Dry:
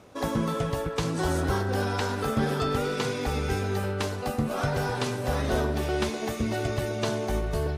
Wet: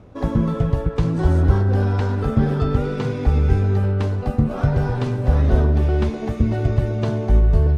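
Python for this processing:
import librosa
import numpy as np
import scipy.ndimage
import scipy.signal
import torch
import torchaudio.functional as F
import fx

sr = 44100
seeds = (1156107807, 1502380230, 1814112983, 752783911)

y = fx.riaa(x, sr, side='playback')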